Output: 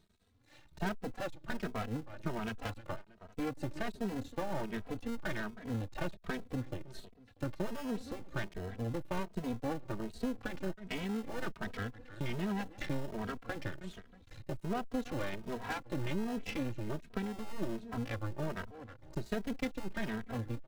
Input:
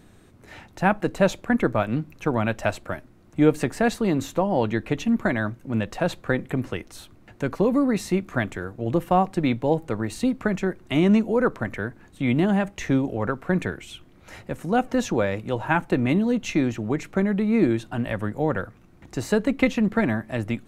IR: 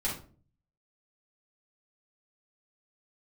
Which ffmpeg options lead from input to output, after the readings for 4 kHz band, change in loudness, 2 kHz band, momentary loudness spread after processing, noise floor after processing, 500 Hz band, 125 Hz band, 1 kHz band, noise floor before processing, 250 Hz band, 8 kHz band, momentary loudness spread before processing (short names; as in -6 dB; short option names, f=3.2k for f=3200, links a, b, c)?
-10.5 dB, -15.5 dB, -14.0 dB, 7 LU, -60 dBFS, -16.5 dB, -13.0 dB, -15.0 dB, -53 dBFS, -16.0 dB, -14.5 dB, 10 LU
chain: -filter_complex "[0:a]afwtdn=0.0251,equalizer=f=160:t=o:w=0.67:g=-6,equalizer=f=400:t=o:w=0.67:g=-7,equalizer=f=4k:t=o:w=0.67:g=10,asplit=2[a][b];[b]acrusher=samples=38:mix=1:aa=0.000001,volume=-7dB[c];[a][c]amix=inputs=2:normalize=0,asoftclip=type=tanh:threshold=-13.5dB,asplit=2[d][e];[e]adelay=317,lowpass=f=2.4k:p=1,volume=-19.5dB,asplit=2[f][g];[g]adelay=317,lowpass=f=2.4k:p=1,volume=0.24[h];[d][f][h]amix=inputs=3:normalize=0,acompressor=threshold=-35dB:ratio=3,aeval=exprs='max(val(0),0)':c=same,asplit=2[i][j];[j]adelay=2.8,afreqshift=1.3[k];[i][k]amix=inputs=2:normalize=1,volume=4dB"